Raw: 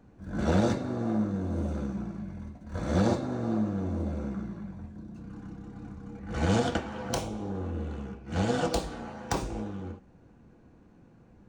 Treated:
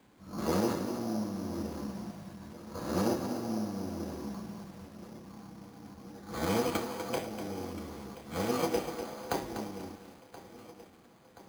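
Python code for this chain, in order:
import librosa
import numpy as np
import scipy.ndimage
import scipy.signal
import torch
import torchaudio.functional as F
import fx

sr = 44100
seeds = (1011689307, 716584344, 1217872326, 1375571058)

p1 = fx.highpass(x, sr, hz=500.0, slope=6)
p2 = fx.formant_shift(p1, sr, semitones=-4)
p3 = fx.quant_dither(p2, sr, seeds[0], bits=8, dither='triangular')
p4 = p2 + (p3 * 10.0 ** (-11.5 / 20.0))
p5 = fx.echo_feedback(p4, sr, ms=1027, feedback_pct=57, wet_db=-17.0)
p6 = np.repeat(scipy.signal.resample_poly(p5, 1, 8), 8)[:len(p5)]
p7 = fx.echo_crushed(p6, sr, ms=246, feedback_pct=35, bits=8, wet_db=-9.0)
y = p7 * 10.0 ** (-1.0 / 20.0)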